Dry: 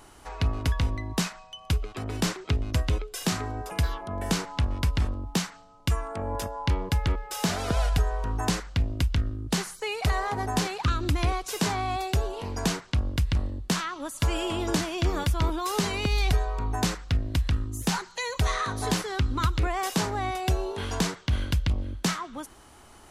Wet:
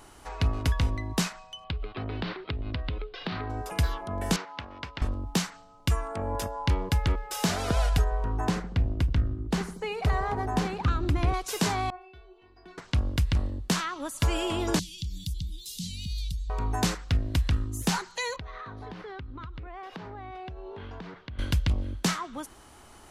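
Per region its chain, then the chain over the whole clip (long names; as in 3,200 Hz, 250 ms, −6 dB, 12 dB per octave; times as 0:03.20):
0:01.64–0:03.50: Butterworth low-pass 4,300 Hz 48 dB per octave + downward compressor, threshold −28 dBFS
0:04.36–0:05.02: high-pass filter 780 Hz 6 dB per octave + high-frequency loss of the air 200 metres
0:08.04–0:11.34: high-shelf EQ 3,100 Hz −12 dB + delay with a low-pass on its return 78 ms, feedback 63%, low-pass 580 Hz, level −11.5 dB
0:11.90–0:12.78: high-frequency loss of the air 390 metres + stiff-string resonator 360 Hz, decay 0.4 s, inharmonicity 0.002 + one half of a high-frequency compander encoder only
0:14.79–0:16.50: downward compressor, threshold −27 dBFS + elliptic band-stop filter 190–3,500 Hz, stop band 50 dB
0:18.36–0:21.39: high-frequency loss of the air 330 metres + downward compressor 8 to 1, threshold −37 dBFS
whole clip: no processing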